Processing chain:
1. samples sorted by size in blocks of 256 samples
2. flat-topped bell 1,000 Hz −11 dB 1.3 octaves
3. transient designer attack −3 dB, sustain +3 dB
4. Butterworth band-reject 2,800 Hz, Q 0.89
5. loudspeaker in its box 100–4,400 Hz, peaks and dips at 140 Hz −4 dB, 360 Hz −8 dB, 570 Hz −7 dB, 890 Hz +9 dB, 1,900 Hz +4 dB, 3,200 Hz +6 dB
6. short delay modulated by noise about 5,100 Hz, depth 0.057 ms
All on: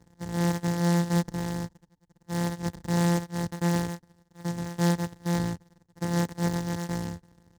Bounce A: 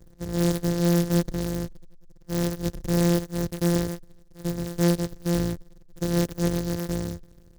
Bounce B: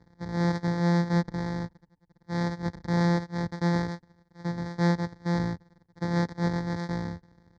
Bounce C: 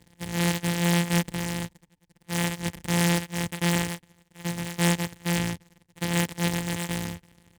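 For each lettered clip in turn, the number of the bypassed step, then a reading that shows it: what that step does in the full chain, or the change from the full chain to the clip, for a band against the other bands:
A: 5, change in crest factor −2.0 dB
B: 6, 4 kHz band −2.5 dB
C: 4, 4 kHz band +8.5 dB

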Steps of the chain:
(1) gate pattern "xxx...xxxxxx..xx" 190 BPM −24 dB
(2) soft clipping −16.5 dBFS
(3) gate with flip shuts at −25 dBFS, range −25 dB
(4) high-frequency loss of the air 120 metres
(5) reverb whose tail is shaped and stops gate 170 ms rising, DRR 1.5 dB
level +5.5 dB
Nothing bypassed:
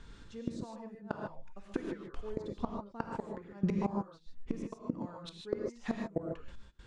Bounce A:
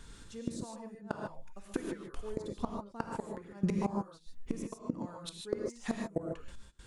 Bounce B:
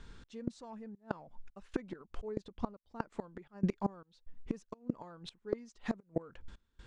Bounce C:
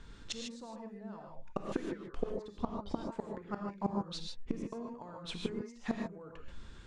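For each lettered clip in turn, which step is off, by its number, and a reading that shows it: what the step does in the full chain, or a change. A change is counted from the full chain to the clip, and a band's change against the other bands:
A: 4, 4 kHz band +3.0 dB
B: 5, change in momentary loudness spread +3 LU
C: 1, 4 kHz band +10.0 dB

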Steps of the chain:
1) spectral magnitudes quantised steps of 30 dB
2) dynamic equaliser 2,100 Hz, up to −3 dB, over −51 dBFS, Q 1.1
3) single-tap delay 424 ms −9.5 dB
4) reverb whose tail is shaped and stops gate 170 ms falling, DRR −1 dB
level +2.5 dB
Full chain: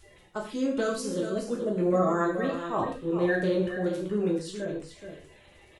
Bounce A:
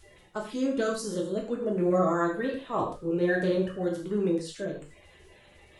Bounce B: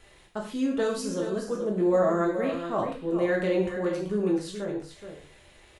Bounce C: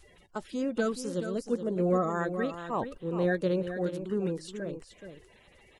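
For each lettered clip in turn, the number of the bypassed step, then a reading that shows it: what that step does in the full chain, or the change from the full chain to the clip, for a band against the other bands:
3, change in momentary loudness spread −2 LU
1, 500 Hz band +3.0 dB
4, echo-to-direct ratio 2.0 dB to −9.5 dB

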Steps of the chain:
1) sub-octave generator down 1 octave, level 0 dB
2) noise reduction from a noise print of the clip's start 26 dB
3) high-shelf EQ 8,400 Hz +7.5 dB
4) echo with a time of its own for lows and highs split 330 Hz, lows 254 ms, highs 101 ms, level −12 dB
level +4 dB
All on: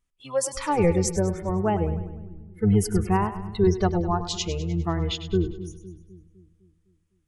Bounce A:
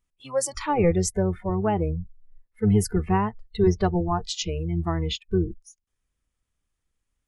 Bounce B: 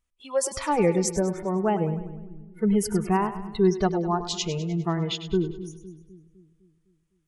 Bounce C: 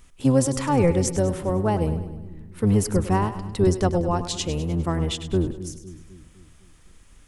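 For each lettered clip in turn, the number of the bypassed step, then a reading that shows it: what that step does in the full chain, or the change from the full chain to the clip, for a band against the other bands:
4, echo-to-direct ratio −10.5 dB to none audible
1, 125 Hz band −4.0 dB
2, change in integrated loudness +1.5 LU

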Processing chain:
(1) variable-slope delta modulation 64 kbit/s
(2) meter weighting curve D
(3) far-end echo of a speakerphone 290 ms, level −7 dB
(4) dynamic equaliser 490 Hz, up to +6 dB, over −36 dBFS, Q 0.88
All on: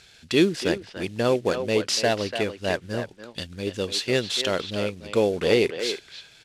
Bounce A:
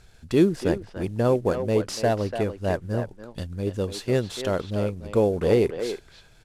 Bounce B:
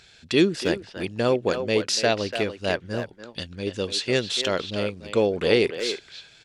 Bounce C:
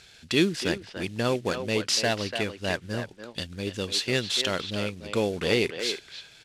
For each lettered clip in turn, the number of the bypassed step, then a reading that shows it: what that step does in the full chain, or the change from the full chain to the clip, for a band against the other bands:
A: 2, 4 kHz band −11.0 dB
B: 1, change in crest factor +2.0 dB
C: 4, 500 Hz band −5.0 dB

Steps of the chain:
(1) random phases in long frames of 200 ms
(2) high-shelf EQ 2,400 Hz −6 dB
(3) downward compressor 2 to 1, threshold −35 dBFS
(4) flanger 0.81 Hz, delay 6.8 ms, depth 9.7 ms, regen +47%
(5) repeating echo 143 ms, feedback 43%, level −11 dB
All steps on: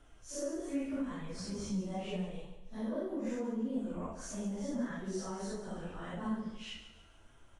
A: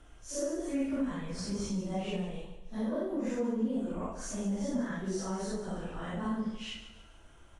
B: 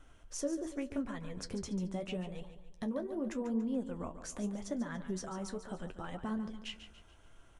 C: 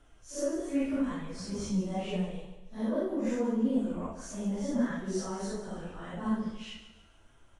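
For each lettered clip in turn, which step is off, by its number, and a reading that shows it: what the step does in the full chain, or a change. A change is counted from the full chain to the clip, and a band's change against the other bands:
4, change in integrated loudness +4.0 LU
1, change in crest factor +2.0 dB
3, average gain reduction 3.5 dB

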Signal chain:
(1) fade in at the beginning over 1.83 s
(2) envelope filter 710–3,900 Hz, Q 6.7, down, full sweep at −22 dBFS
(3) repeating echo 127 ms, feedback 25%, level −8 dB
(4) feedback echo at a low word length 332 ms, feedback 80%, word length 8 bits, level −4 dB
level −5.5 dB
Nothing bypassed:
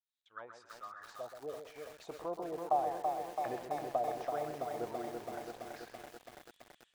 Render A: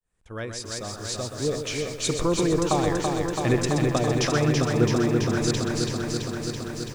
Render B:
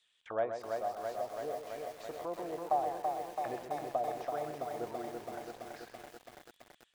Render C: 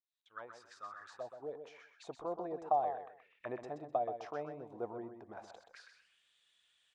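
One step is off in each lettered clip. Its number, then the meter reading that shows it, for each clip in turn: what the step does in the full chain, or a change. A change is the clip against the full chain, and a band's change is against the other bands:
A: 2, 1 kHz band −19.0 dB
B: 1, change in momentary loudness spread −3 LU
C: 4, change in crest factor +2.5 dB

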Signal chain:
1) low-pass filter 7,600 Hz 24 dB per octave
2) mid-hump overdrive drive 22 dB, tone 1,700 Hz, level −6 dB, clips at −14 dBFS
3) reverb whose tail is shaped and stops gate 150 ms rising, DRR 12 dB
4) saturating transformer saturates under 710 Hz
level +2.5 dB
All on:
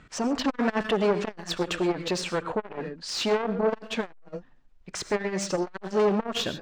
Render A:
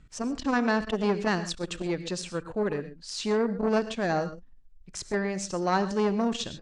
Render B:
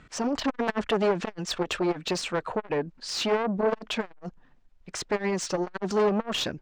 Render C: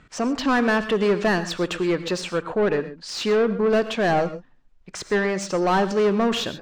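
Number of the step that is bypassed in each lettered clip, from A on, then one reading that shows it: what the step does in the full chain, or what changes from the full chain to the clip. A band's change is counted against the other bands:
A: 2, change in crest factor +1.5 dB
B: 3, change in momentary loudness spread −5 LU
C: 4, change in crest factor −4.0 dB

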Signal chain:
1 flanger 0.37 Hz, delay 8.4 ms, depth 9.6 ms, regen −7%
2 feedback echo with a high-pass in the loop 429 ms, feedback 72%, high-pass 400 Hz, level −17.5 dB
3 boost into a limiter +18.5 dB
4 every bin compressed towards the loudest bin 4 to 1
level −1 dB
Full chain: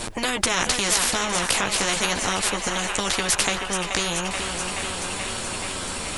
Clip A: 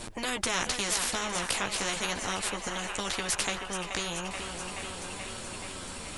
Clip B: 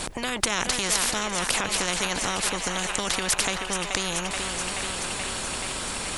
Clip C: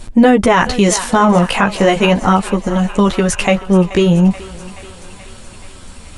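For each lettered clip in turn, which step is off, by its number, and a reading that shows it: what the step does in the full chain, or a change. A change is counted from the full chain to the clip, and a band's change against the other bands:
3, change in momentary loudness spread +2 LU
1, change in crest factor +2.5 dB
4, 8 kHz band −15.0 dB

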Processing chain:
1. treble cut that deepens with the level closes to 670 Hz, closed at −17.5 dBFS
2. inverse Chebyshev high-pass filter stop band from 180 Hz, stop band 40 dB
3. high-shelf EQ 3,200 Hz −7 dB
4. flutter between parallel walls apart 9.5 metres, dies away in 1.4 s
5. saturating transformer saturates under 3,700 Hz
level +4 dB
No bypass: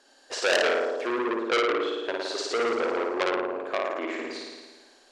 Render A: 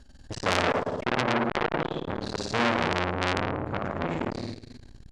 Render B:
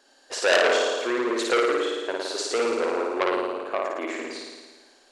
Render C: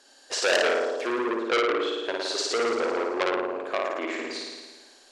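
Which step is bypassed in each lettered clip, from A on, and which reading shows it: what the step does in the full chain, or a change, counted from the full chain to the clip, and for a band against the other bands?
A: 2, change in crest factor +2.5 dB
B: 1, 8 kHz band +3.0 dB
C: 3, 8 kHz band +4.0 dB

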